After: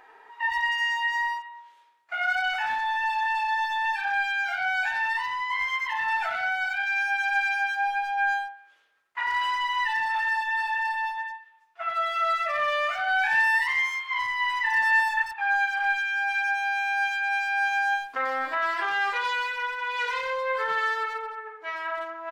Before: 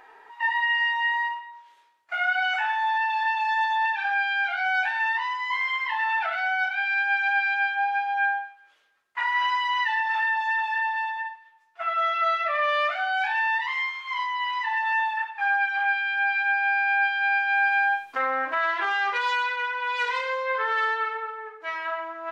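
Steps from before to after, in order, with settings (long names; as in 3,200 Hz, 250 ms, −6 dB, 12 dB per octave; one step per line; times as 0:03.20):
0:13.05–0:15.23: dynamic equaliser 1,800 Hz, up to +7 dB, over −39 dBFS, Q 2.2
far-end echo of a speakerphone 90 ms, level −7 dB
level −2 dB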